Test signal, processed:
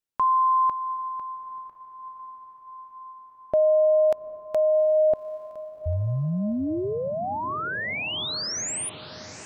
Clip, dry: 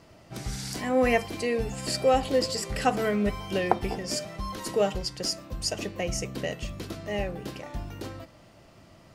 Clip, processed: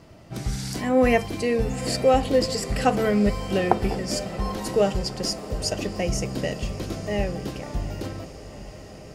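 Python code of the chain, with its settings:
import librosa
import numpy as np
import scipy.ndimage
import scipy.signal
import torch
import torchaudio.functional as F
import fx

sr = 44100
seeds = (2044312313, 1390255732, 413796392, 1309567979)

p1 = fx.low_shelf(x, sr, hz=430.0, db=5.5)
p2 = p1 + fx.echo_diffused(p1, sr, ms=797, feedback_pct=70, wet_db=-15.0, dry=0)
y = F.gain(torch.from_numpy(p2), 1.5).numpy()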